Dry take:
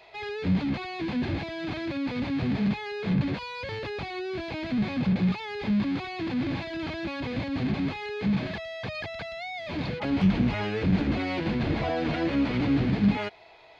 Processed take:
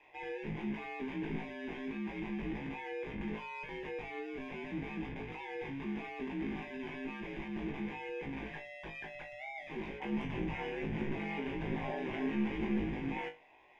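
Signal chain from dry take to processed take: static phaser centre 870 Hz, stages 8; ring modulator 69 Hz; flutter echo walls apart 3.2 m, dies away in 0.23 s; trim -5.5 dB

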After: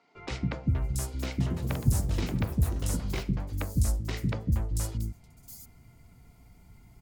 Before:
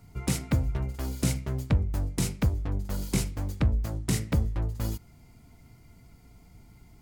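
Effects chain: three bands offset in time mids, lows, highs 150/680 ms, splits 320/5000 Hz; 1.24–3.68 s: ever faster or slower copies 162 ms, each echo +5 st, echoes 3, each echo -6 dB; trim -1 dB

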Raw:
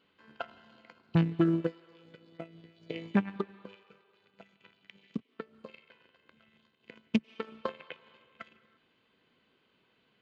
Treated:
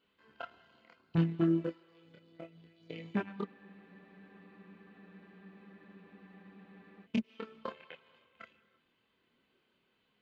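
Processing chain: chorus voices 6, 0.61 Hz, delay 27 ms, depth 2.9 ms; spectral freeze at 3.49 s, 3.55 s; trim -2 dB

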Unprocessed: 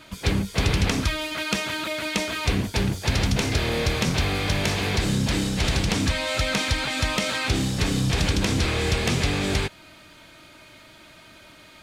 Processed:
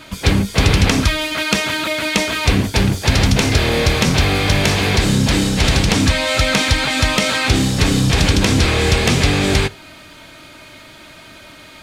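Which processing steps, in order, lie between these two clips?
reverberation RT60 0.35 s, pre-delay 4 ms, DRR 16 dB; trim +8.5 dB

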